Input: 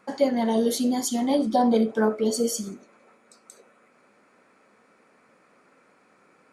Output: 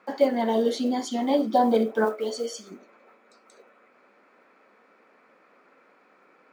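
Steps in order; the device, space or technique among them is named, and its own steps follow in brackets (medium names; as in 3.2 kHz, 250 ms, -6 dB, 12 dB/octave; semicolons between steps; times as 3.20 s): early digital voice recorder (band-pass 270–3800 Hz; block-companded coder 7-bit); 2.04–2.70 s: high-pass 470 Hz -> 970 Hz 6 dB/octave; trim +1.5 dB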